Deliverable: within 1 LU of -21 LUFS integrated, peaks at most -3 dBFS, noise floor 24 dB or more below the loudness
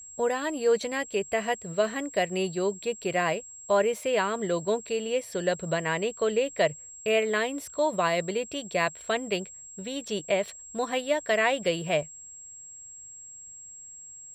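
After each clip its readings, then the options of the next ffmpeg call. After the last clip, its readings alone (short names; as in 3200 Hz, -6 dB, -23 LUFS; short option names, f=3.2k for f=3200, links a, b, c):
steady tone 7600 Hz; tone level -43 dBFS; loudness -28.0 LUFS; peak -11.5 dBFS; loudness target -21.0 LUFS
-> -af "bandreject=f=7.6k:w=30"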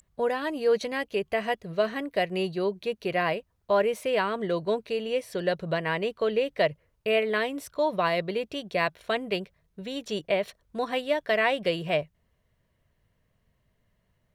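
steady tone none; loudness -28.0 LUFS; peak -11.5 dBFS; loudness target -21.0 LUFS
-> -af "volume=7dB"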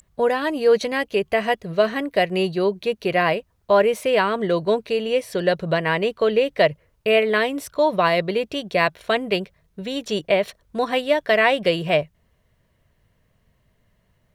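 loudness -21.0 LUFS; peak -4.5 dBFS; noise floor -65 dBFS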